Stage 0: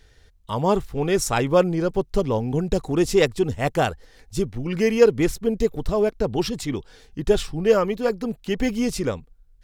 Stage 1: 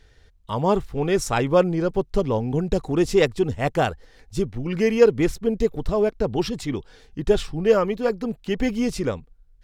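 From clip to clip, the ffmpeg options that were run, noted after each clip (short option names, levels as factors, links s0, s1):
-af "highshelf=f=6600:g=-7.5"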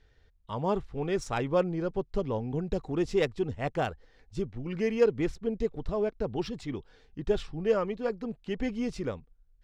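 -af "adynamicsmooth=sensitivity=1.5:basefreq=5900,volume=0.376"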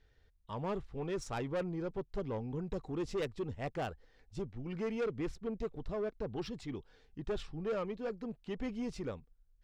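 -af "asoftclip=type=tanh:threshold=0.0531,volume=0.562"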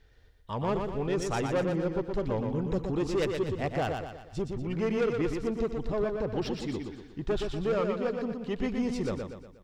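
-af "aecho=1:1:120|240|360|480|600|720:0.562|0.259|0.119|0.0547|0.0252|0.0116,volume=2.24"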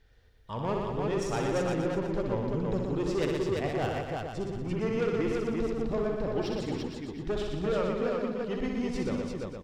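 -af "aecho=1:1:62|342|712:0.562|0.708|0.126,volume=0.75"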